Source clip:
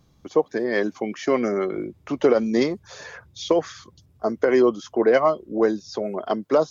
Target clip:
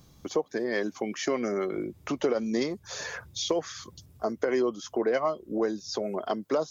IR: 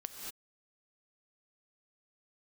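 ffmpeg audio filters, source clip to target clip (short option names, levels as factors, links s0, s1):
-af "highshelf=f=5900:g=10.5,acompressor=threshold=0.0178:ratio=2,volume=1.33"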